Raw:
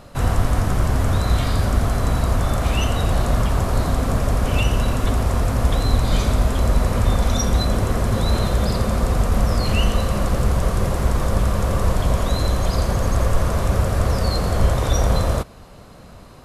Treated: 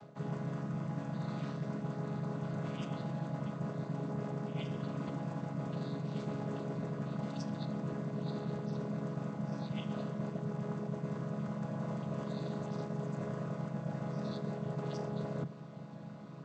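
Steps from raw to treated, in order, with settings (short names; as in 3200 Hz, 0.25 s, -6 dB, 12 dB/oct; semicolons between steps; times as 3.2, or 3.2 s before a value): chord vocoder minor triad, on C#3; reverse; compressor 6:1, threshold -33 dBFS, peak gain reduction 15.5 dB; reverse; gain -2.5 dB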